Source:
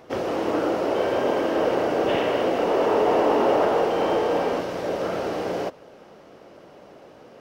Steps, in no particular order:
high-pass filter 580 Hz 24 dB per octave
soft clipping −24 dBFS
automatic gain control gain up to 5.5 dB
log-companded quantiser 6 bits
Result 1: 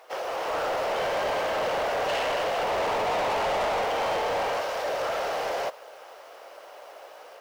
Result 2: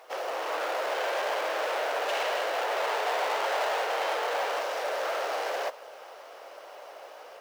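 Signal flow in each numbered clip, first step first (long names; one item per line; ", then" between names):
high-pass filter, then log-companded quantiser, then automatic gain control, then soft clipping
automatic gain control, then soft clipping, then high-pass filter, then log-companded quantiser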